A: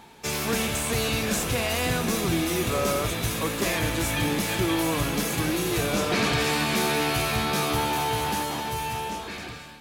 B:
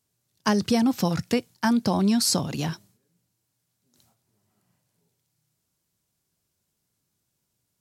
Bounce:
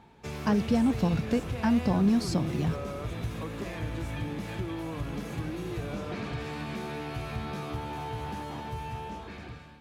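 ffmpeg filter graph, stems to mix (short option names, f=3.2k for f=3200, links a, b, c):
-filter_complex "[0:a]acompressor=threshold=-26dB:ratio=6,volume=-7dB[a];[1:a]acrusher=bits=6:mix=0:aa=0.000001,volume=-5.5dB[b];[a][b]amix=inputs=2:normalize=0,lowpass=f=1.9k:p=1,equalizer=f=75:t=o:w=2.6:g=8"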